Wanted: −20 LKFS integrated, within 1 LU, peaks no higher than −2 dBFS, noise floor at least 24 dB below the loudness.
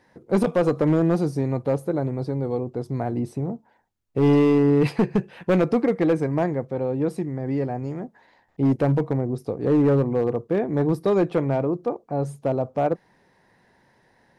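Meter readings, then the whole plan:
share of clipped samples 1.3%; peaks flattened at −13.5 dBFS; integrated loudness −23.0 LKFS; sample peak −13.5 dBFS; target loudness −20.0 LKFS
→ clipped peaks rebuilt −13.5 dBFS
level +3 dB

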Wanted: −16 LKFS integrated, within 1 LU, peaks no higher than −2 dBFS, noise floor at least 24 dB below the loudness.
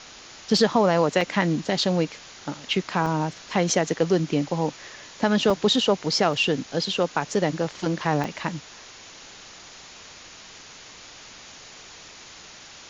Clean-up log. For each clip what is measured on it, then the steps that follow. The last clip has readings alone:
number of dropouts 6; longest dropout 2.6 ms; background noise floor −45 dBFS; target noise floor −48 dBFS; integrated loudness −23.5 LKFS; sample peak −6.0 dBFS; target loudness −16.0 LKFS
→ repair the gap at 0:00.57/0:01.21/0:03.06/0:05.50/0:06.33/0:08.24, 2.6 ms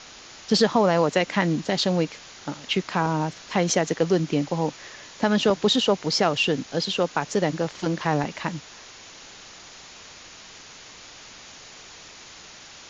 number of dropouts 0; background noise floor −45 dBFS; target noise floor −48 dBFS
→ broadband denoise 6 dB, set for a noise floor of −45 dBFS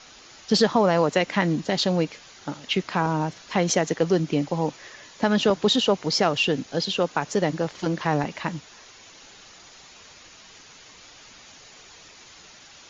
background noise floor −49 dBFS; integrated loudness −23.5 LKFS; sample peak −6.0 dBFS; target loudness −16.0 LKFS
→ level +7.5 dB
brickwall limiter −2 dBFS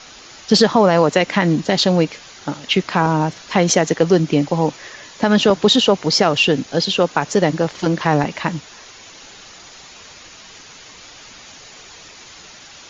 integrated loudness −16.5 LKFS; sample peak −2.0 dBFS; background noise floor −41 dBFS

